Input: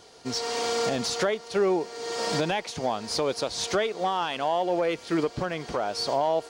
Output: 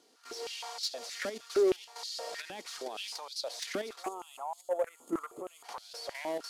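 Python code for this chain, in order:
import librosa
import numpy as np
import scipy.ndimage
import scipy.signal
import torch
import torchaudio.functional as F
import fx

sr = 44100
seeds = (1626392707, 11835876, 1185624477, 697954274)

y = fx.cvsd(x, sr, bps=64000)
y = fx.high_shelf(y, sr, hz=2600.0, db=5.0)
y = fx.echo_wet_highpass(y, sr, ms=481, feedback_pct=39, hz=3000.0, wet_db=-6.0)
y = fx.level_steps(y, sr, step_db=12)
y = fx.spec_box(y, sr, start_s=4.04, length_s=1.6, low_hz=1400.0, high_hz=6400.0, gain_db=-18)
y = 10.0 ** (-23.5 / 20.0) * np.tanh(y / 10.0 ** (-23.5 / 20.0))
y = fx.filter_held_highpass(y, sr, hz=6.4, low_hz=260.0, high_hz=4200.0)
y = y * librosa.db_to_amplitude(-7.5)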